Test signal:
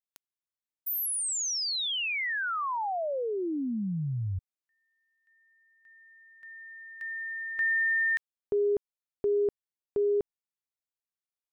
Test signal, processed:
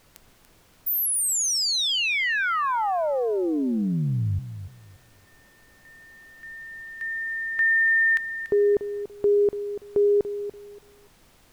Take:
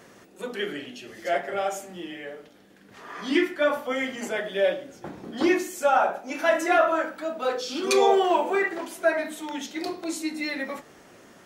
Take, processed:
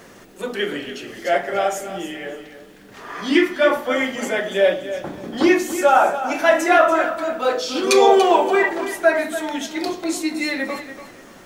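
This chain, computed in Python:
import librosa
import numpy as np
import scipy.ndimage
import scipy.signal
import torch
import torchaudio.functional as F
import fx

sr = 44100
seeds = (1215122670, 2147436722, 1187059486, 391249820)

p1 = fx.dmg_noise_colour(x, sr, seeds[0], colour='pink', level_db=-64.0)
p2 = p1 + fx.echo_feedback(p1, sr, ms=288, feedback_pct=23, wet_db=-11.5, dry=0)
y = p2 * librosa.db_to_amplitude(6.5)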